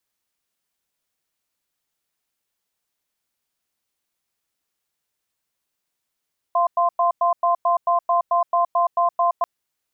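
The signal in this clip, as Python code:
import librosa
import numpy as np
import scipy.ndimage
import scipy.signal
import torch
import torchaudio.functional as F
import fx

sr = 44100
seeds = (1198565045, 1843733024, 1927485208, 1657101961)

y = fx.cadence(sr, length_s=2.89, low_hz=692.0, high_hz=1040.0, on_s=0.12, off_s=0.1, level_db=-18.0)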